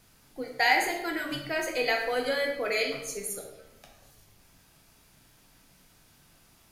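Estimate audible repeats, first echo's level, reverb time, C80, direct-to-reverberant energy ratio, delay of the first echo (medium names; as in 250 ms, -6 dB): no echo, no echo, 0.95 s, 7.5 dB, 1.0 dB, no echo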